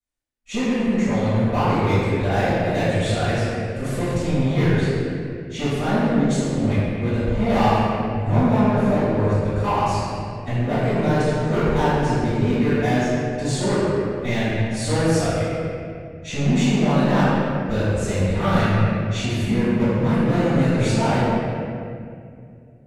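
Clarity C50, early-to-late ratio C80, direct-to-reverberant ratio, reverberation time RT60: -5.5 dB, -3.5 dB, -17.5 dB, 2.3 s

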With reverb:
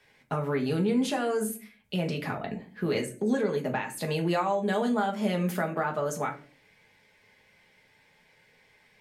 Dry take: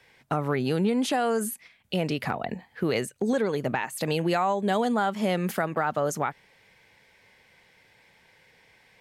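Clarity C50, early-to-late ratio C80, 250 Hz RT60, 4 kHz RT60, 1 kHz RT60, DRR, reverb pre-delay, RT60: 13.0 dB, 18.5 dB, 0.70 s, 0.25 s, 0.35 s, 1.0 dB, 5 ms, 0.40 s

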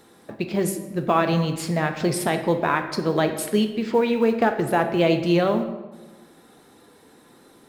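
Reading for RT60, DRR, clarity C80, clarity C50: 1.2 s, 6.5 dB, 11.0 dB, 9.0 dB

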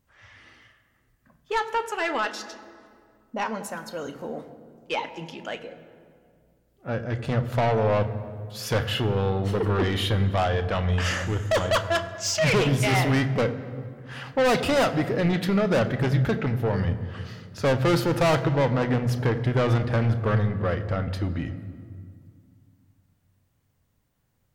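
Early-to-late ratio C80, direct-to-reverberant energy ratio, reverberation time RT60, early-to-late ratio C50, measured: 13.0 dB, 9.0 dB, 2.1 s, 12.0 dB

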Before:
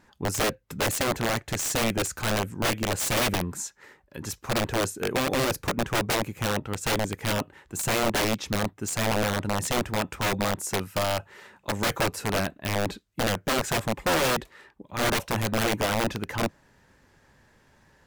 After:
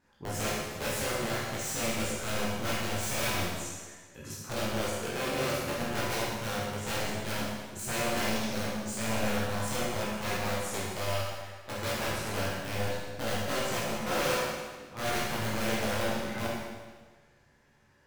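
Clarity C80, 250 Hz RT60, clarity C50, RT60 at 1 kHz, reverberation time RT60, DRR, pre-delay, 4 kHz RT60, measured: 1.0 dB, 1.4 s, -1.5 dB, 1.4 s, 1.4 s, -8.0 dB, 14 ms, 1.4 s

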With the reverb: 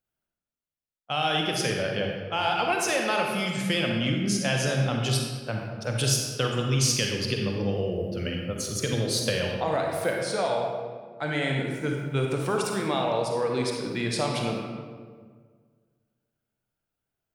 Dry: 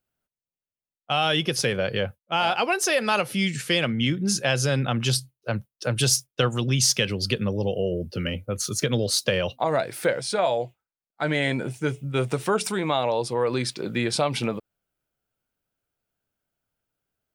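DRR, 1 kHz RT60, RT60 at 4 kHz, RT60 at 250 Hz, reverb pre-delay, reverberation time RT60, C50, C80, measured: 0.5 dB, 1.6 s, 1.0 s, 1.9 s, 39 ms, 1.7 s, 1.5 dB, 3.5 dB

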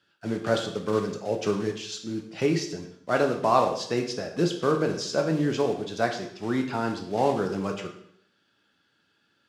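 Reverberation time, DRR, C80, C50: 0.65 s, 3.5 dB, 11.0 dB, 8.0 dB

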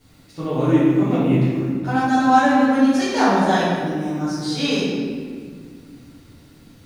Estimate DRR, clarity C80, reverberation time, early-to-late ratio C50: -13.0 dB, 0.0 dB, 1.9 s, -2.5 dB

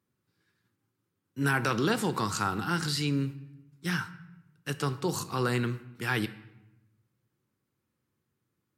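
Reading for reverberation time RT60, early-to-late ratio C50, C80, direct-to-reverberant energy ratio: 0.90 s, 15.0 dB, 16.5 dB, 11.0 dB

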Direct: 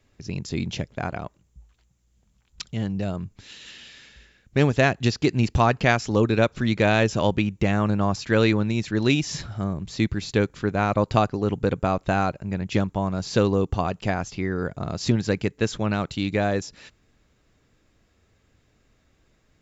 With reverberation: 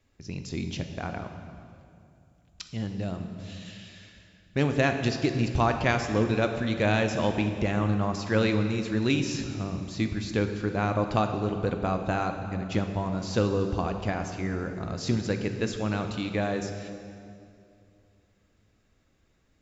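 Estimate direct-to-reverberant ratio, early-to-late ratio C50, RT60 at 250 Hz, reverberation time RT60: 5.5 dB, 7.0 dB, 2.9 s, 2.5 s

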